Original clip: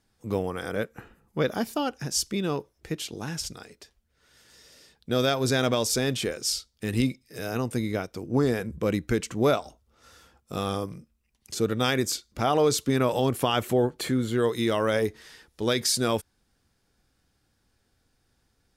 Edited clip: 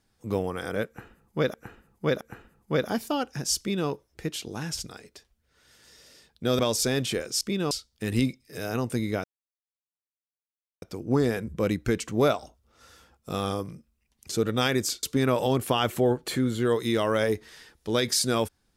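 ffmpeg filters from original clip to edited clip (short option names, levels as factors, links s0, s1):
-filter_complex "[0:a]asplit=8[s0][s1][s2][s3][s4][s5][s6][s7];[s0]atrim=end=1.542[s8];[s1]atrim=start=0.868:end=1.542[s9];[s2]atrim=start=0.868:end=5.252[s10];[s3]atrim=start=5.698:end=6.522[s11];[s4]atrim=start=2.248:end=2.552[s12];[s5]atrim=start=6.518:end=8.05,asetpts=PTS-STARTPTS,afade=t=out:st=1.528:d=0.004:c=hsin,apad=pad_dur=1.58[s13];[s6]atrim=start=8.05:end=12.262,asetpts=PTS-STARTPTS,afade=t=in:d=0.004:c=hsin[s14];[s7]atrim=start=12.758[s15];[s8][s9]acrossfade=d=0.004:c1=hsin:c2=hsin[s16];[s16][s10]acrossfade=d=0.004:c1=hsin:c2=hsin[s17];[s17][s11]acrossfade=d=0.004:c1=hsin:c2=hsin[s18];[s18][s12]acrossfade=d=0.004:c1=hsin:c2=hsin[s19];[s13][s14]concat=n=2:v=0:a=1[s20];[s19][s20]acrossfade=d=0.004:c1=hsin:c2=hsin[s21];[s21][s15]acrossfade=d=0.004:c1=hsin:c2=hsin"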